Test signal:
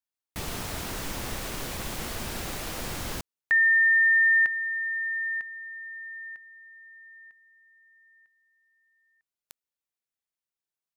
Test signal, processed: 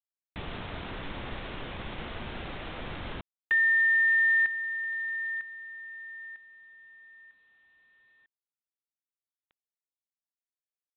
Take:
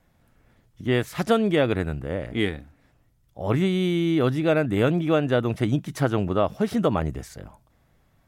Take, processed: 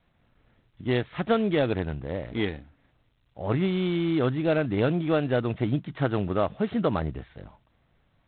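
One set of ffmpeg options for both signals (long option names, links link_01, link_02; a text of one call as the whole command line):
ffmpeg -i in.wav -af "volume=-3dB" -ar 8000 -c:a adpcm_g726 -b:a 24k out.wav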